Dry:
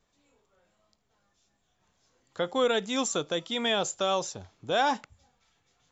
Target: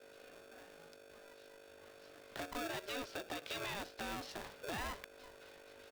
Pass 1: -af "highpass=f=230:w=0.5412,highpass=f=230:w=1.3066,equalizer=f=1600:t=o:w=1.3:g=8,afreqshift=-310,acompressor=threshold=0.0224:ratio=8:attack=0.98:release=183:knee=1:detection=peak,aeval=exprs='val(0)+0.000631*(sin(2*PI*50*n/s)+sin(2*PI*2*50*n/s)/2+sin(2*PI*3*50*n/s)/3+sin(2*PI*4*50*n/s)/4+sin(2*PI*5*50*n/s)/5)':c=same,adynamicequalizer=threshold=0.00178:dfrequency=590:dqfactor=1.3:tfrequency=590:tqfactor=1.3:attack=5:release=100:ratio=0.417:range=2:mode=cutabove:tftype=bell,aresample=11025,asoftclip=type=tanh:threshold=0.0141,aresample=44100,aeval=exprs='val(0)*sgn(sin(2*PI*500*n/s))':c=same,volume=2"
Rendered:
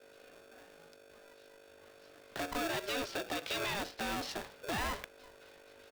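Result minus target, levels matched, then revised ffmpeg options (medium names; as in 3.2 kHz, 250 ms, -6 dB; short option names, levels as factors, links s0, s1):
compression: peak gain reduction -9 dB
-af "highpass=f=230:w=0.5412,highpass=f=230:w=1.3066,equalizer=f=1600:t=o:w=1.3:g=8,afreqshift=-310,acompressor=threshold=0.00668:ratio=8:attack=0.98:release=183:knee=1:detection=peak,aeval=exprs='val(0)+0.000631*(sin(2*PI*50*n/s)+sin(2*PI*2*50*n/s)/2+sin(2*PI*3*50*n/s)/3+sin(2*PI*4*50*n/s)/4+sin(2*PI*5*50*n/s)/5)':c=same,adynamicequalizer=threshold=0.00178:dfrequency=590:dqfactor=1.3:tfrequency=590:tqfactor=1.3:attack=5:release=100:ratio=0.417:range=2:mode=cutabove:tftype=bell,aresample=11025,asoftclip=type=tanh:threshold=0.0141,aresample=44100,aeval=exprs='val(0)*sgn(sin(2*PI*500*n/s))':c=same,volume=2"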